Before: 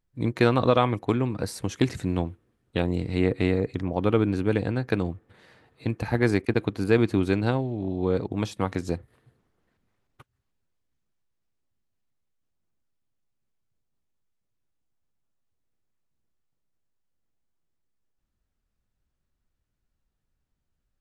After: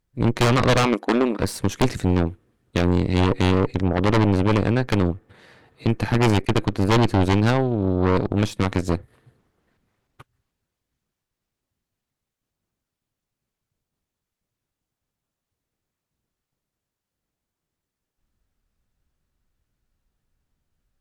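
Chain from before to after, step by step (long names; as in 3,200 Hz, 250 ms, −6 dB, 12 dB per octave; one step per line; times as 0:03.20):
harmonic generator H 5 −16 dB, 8 −7 dB, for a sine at −6 dBFS
0:00.85–0:01.40: linear-phase brick-wall high-pass 200 Hz
soft clipping −9 dBFS, distortion −13 dB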